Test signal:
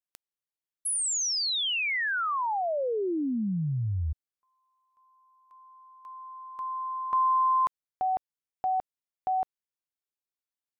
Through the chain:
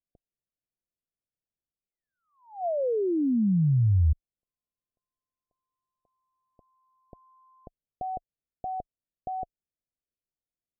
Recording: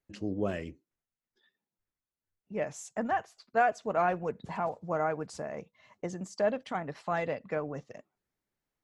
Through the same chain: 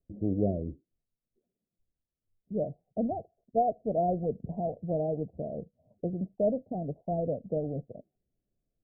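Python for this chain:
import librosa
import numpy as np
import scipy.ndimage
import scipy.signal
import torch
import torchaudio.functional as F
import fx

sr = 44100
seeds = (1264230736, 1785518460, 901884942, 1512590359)

y = scipy.signal.sosfilt(scipy.signal.cheby1(6, 1.0, 710.0, 'lowpass', fs=sr, output='sos'), x)
y = fx.tilt_eq(y, sr, slope=-2.5)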